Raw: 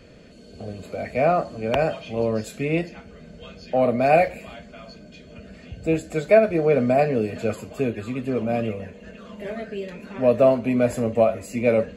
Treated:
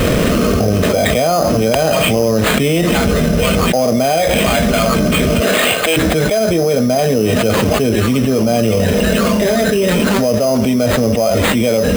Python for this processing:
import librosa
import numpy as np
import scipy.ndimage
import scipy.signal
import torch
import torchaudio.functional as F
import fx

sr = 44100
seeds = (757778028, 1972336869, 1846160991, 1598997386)

y = fx.highpass(x, sr, hz=fx.line((5.4, 340.0), (5.96, 1100.0)), slope=12, at=(5.4, 5.96), fade=0.02)
y = fx.sample_hold(y, sr, seeds[0], rate_hz=5600.0, jitter_pct=0)
y = fx.env_flatten(y, sr, amount_pct=100)
y = y * librosa.db_to_amplitude(-2.5)